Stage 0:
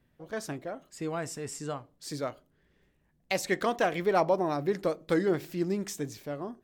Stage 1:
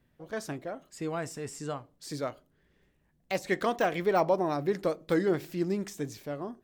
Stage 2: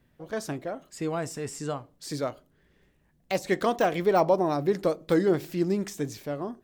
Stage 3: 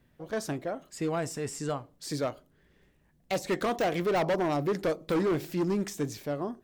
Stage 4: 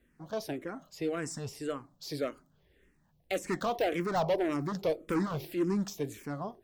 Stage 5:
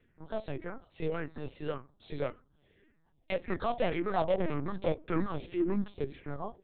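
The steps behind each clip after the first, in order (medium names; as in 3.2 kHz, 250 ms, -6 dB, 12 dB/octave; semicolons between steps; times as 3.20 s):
de-esser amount 90%
dynamic bell 1.9 kHz, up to -4 dB, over -44 dBFS, Q 1.1; trim +4 dB
hard clipper -23.5 dBFS, distortion -8 dB
barber-pole phaser -1.8 Hz
LPC vocoder at 8 kHz pitch kept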